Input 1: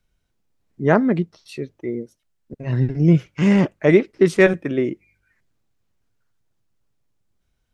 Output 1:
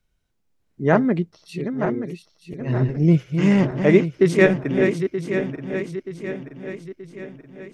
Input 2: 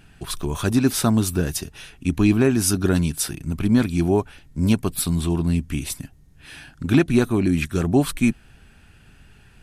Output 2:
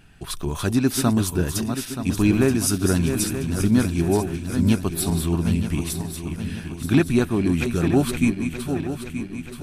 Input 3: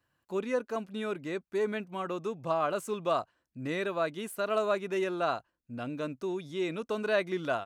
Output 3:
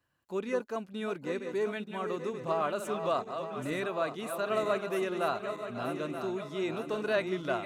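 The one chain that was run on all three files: backward echo that repeats 464 ms, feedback 69%, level -7.5 dB; trim -1.5 dB

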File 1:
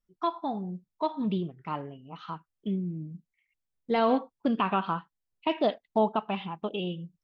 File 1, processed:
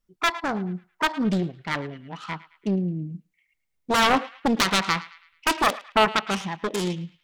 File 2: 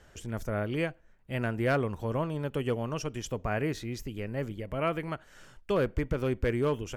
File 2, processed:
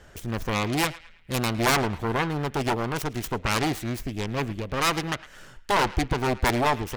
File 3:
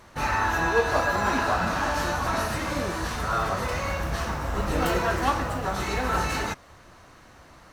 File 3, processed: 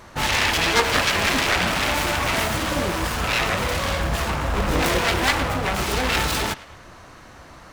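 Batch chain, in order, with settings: self-modulated delay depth 0.89 ms; in parallel at -4.5 dB: hard clipper -25 dBFS; on the sum: band-passed feedback delay 109 ms, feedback 45%, band-pass 2.3 kHz, level -16 dB; trim +2.5 dB

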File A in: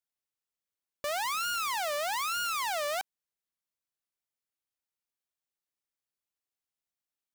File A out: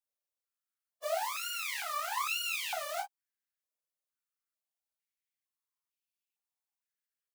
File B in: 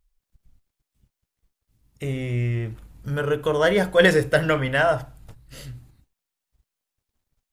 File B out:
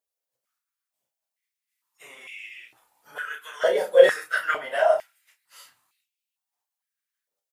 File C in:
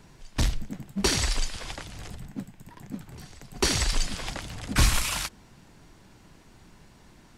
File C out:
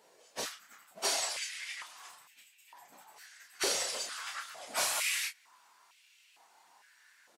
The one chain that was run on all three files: phase randomisation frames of 50 ms; treble shelf 5.3 kHz +7.5 dB; doubling 32 ms -6 dB; step-sequenced high-pass 2.2 Hz 520–2600 Hz; trim -10 dB

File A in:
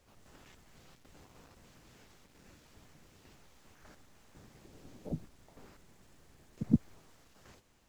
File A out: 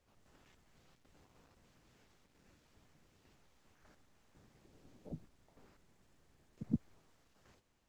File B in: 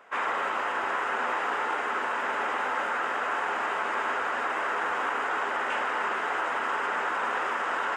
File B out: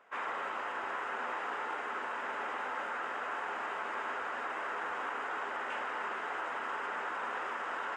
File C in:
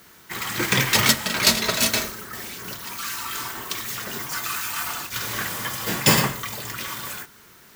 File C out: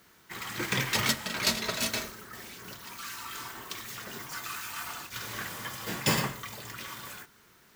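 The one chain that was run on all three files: treble shelf 7.6 kHz -4.5 dB; trim -8.5 dB

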